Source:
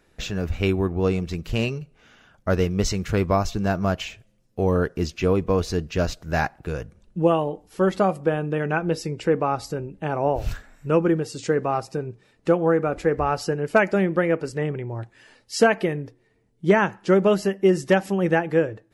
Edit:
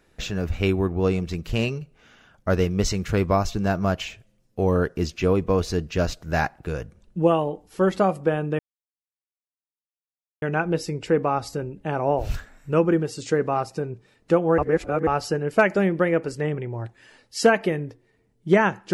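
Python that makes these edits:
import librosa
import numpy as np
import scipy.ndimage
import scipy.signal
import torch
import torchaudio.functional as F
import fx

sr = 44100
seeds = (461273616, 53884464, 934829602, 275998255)

y = fx.edit(x, sr, fx.insert_silence(at_s=8.59, length_s=1.83),
    fx.reverse_span(start_s=12.75, length_s=0.49), tone=tone)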